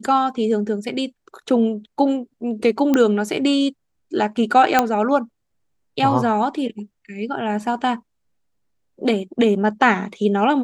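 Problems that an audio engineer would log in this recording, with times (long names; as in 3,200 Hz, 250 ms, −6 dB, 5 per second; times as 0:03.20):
0:02.94: click −6 dBFS
0:04.79: click −1 dBFS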